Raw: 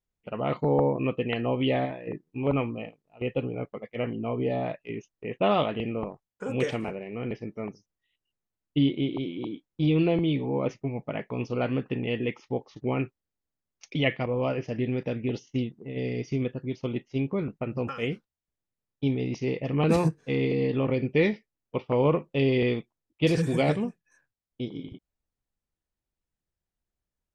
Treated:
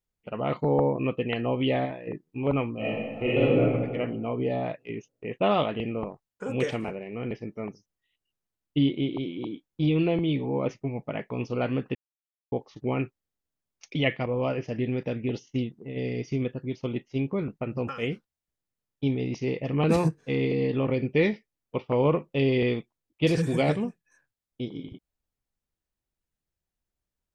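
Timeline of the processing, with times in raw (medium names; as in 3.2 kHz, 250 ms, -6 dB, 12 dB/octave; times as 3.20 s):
2.76–3.61 s: reverb throw, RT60 1.5 s, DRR -9.5 dB
9.89–10.29 s: Chebyshev low-pass 3.7 kHz
11.95–12.52 s: mute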